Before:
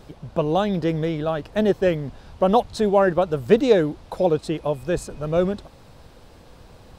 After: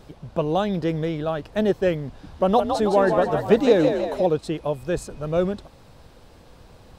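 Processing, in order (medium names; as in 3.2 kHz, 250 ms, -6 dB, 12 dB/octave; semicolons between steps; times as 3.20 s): 2.07–4.26 s: frequency-shifting echo 161 ms, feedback 55%, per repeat +51 Hz, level -6 dB; trim -1.5 dB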